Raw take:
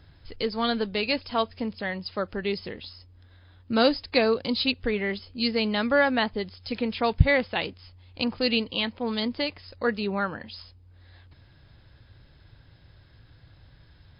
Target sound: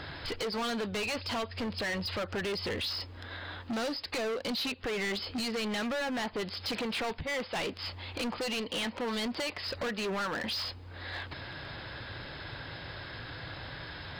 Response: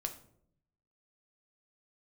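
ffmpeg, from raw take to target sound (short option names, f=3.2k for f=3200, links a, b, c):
-filter_complex "[0:a]asettb=1/sr,asplit=3[a][b][c];[a]atrim=end=0.824[d];[b]atrim=start=0.82:end=2.82,asetpts=PTS-STARTPTS,afade=t=in:d=0.004:c=qsin,afade=t=out:st=1.996:d=0.004:c=qsin,equalizer=f=92:t=o:w=0.22:g=14.5[e];[c]atrim=start=2.816[f];[d][e]acrossfade=d=0.004:c1=hsin:c2=qsin[g];[g][f]acrossfade=d=0.004:c1=qsin:c2=hsin,acompressor=threshold=-38dB:ratio=8,asplit=2[h][i];[i]highpass=f=720:p=1,volume=23dB,asoftclip=type=tanh:threshold=-25.5dB[j];[h][j]amix=inputs=2:normalize=0,lowpass=f=2.6k:p=1,volume=-6dB,asoftclip=type=hard:threshold=-36.5dB,volume=5.5dB"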